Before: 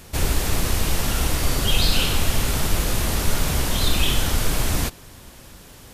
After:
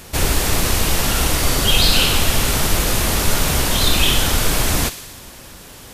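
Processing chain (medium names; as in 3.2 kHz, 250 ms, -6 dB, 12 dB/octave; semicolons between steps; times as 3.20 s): bass shelf 230 Hz -4.5 dB; on a send: feedback echo behind a high-pass 60 ms, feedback 74%, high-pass 2 kHz, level -13 dB; on the sum: trim +6.5 dB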